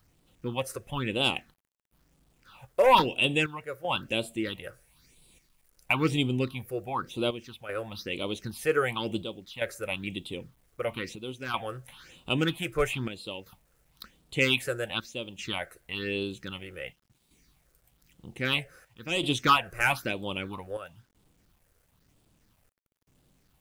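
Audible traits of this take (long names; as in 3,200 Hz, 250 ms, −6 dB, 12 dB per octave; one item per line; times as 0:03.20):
phaser sweep stages 6, 1 Hz, lowest notch 230–1,700 Hz
chopped level 0.52 Hz, depth 65%, duty 80%
a quantiser's noise floor 12 bits, dither none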